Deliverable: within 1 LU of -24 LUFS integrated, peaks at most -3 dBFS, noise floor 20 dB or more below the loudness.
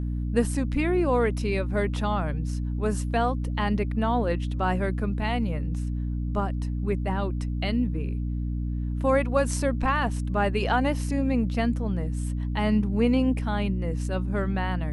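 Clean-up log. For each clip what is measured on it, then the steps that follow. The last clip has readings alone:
hum 60 Hz; highest harmonic 300 Hz; hum level -26 dBFS; loudness -26.5 LUFS; peak level -9.0 dBFS; loudness target -24.0 LUFS
-> hum notches 60/120/180/240/300 Hz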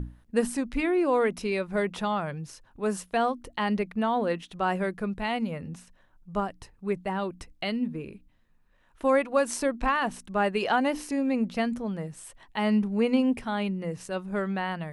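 hum not found; loudness -28.5 LUFS; peak level -11.0 dBFS; loudness target -24.0 LUFS
-> trim +4.5 dB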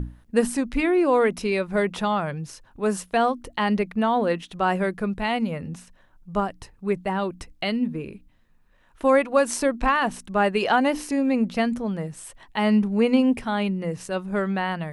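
loudness -24.0 LUFS; peak level -6.5 dBFS; noise floor -57 dBFS

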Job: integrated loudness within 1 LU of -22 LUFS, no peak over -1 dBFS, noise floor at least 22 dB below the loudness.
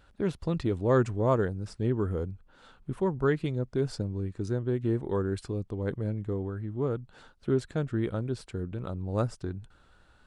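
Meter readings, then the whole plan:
loudness -31.0 LUFS; peak level -13.5 dBFS; loudness target -22.0 LUFS
-> trim +9 dB

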